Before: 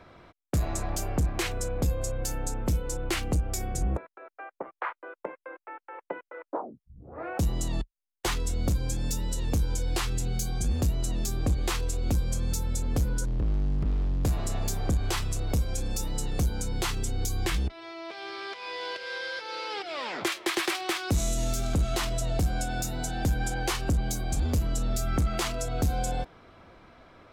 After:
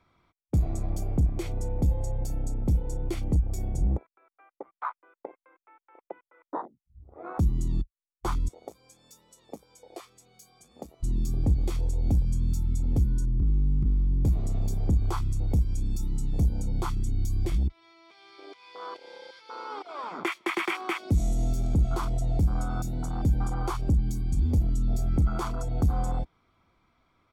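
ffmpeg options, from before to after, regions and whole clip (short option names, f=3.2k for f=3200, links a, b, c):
-filter_complex "[0:a]asettb=1/sr,asplit=3[a][b][c];[a]atrim=end=8.484[d];[b]atrim=start=8.48:end=11.03,asetpts=PTS-STARTPTS,afade=t=in:d=0.004:c=qsin,afade=t=out:st=2.546:d=0.004:c=qsin,highpass=620,tiltshelf=f=860:g=7.5,aecho=1:1:1.7:0.35,atrim=end_sample=112455[e];[c]atrim=start=11.026[f];[d][e]acrossfade=d=0.004:c1=hsin:c2=qsin[g];[g][f]acrossfade=d=0.004:c1=qsin:c2=hsin,afwtdn=0.0316,equalizer=f=13k:t=o:w=2.7:g=4.5,aecho=1:1:0.9:0.45"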